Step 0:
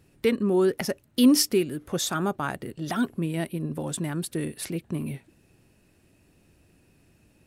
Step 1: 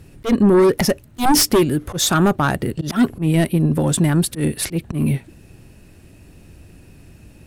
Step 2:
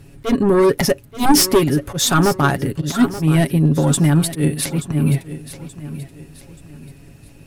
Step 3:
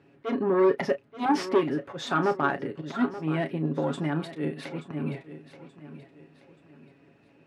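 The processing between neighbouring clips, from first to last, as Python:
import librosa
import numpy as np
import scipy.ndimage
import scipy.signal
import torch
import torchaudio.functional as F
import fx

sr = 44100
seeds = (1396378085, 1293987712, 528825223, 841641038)

y1 = fx.fold_sine(x, sr, drive_db=11, ceiling_db=-7.5)
y1 = fx.auto_swell(y1, sr, attack_ms=104.0)
y1 = fx.low_shelf(y1, sr, hz=120.0, db=10.0)
y1 = y1 * 10.0 ** (-3.0 / 20.0)
y2 = y1 + 0.49 * np.pad(y1, (int(7.2 * sr / 1000.0), 0))[:len(y1)]
y2 = fx.echo_feedback(y2, sr, ms=879, feedback_pct=36, wet_db=-14)
y3 = fx.bandpass_edges(y2, sr, low_hz=280.0, high_hz=2300.0)
y3 = fx.doubler(y3, sr, ms=32.0, db=-11.5)
y3 = y3 * 10.0 ** (-7.5 / 20.0)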